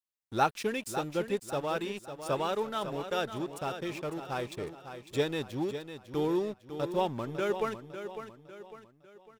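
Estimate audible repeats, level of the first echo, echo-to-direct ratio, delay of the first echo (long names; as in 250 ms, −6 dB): 4, −10.0 dB, −9.0 dB, 552 ms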